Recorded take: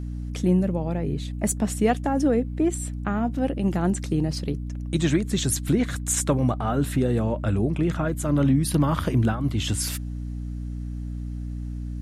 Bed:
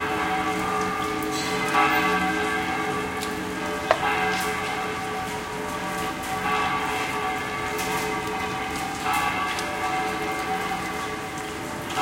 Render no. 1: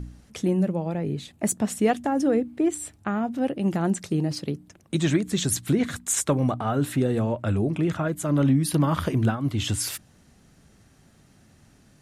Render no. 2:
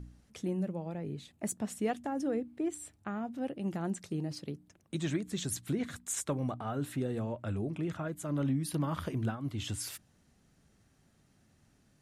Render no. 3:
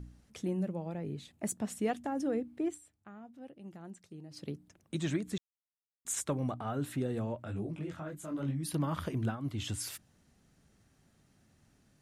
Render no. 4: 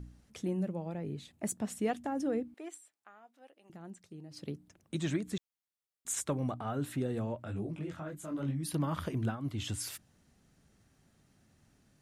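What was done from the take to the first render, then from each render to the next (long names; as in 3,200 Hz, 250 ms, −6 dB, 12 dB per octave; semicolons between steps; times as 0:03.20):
hum removal 60 Hz, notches 5
level −11 dB
0:02.68–0:04.44: duck −13 dB, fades 0.13 s; 0:05.38–0:06.05: silence; 0:07.43–0:08.62: micro pitch shift up and down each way 45 cents → 28 cents
0:02.54–0:03.70: high-pass filter 670 Hz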